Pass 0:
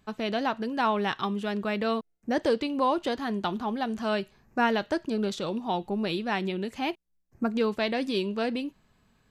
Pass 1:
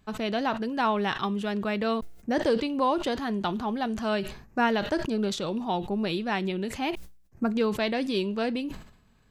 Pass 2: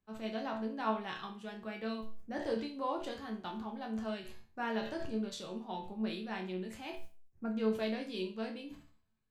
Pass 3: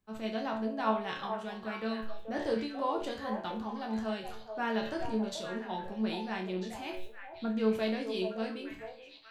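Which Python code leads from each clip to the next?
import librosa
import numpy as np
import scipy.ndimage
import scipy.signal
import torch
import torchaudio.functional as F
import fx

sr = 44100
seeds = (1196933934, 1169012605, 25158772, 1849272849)

y1 = fx.low_shelf(x, sr, hz=93.0, db=6.5)
y1 = fx.sustainer(y1, sr, db_per_s=92.0)
y2 = fx.resonator_bank(y1, sr, root=38, chord='major', decay_s=0.41)
y2 = fx.band_widen(y2, sr, depth_pct=40)
y2 = F.gain(torch.from_numpy(y2), 1.0).numpy()
y3 = fx.echo_stepped(y2, sr, ms=432, hz=660.0, octaves=1.4, feedback_pct=70, wet_db=-4.0)
y3 = F.gain(torch.from_numpy(y3), 3.5).numpy()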